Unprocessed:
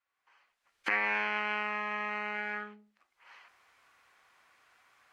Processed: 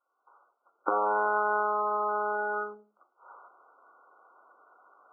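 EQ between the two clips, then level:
high-pass filter 370 Hz 24 dB per octave
linear-phase brick-wall low-pass 1,500 Hz
low-shelf EQ 490 Hz +11.5 dB
+7.0 dB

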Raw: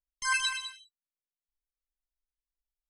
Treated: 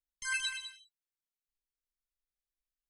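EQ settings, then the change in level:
dynamic equaliser 5,300 Hz, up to −7 dB, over −54 dBFS, Q 5.7
Butterworth band-reject 820 Hz, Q 1.1
−4.5 dB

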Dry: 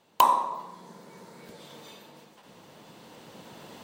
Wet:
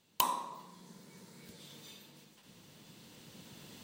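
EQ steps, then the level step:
parametric band 760 Hz −14.5 dB 2.6 octaves
0.0 dB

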